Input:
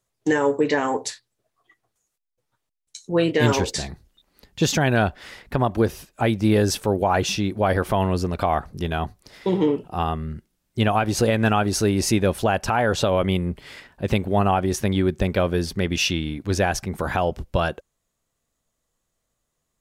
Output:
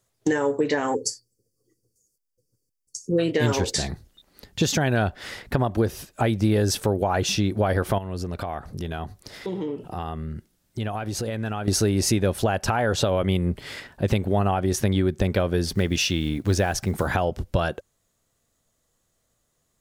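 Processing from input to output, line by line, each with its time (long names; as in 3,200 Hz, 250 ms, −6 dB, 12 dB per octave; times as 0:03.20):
0:00.95–0:03.19: gain on a spectral selection 540–4,400 Hz −29 dB
0:07.98–0:11.68: downward compressor 3 to 1, threshold −36 dBFS
0:15.66–0:17.08: one scale factor per block 7 bits
whole clip: low-shelf EQ 150 Hz −4 dB; downward compressor 3 to 1, threshold −27 dBFS; graphic EQ with 15 bands 100 Hz +5 dB, 1,000 Hz −3 dB, 2,500 Hz −3 dB; level +6 dB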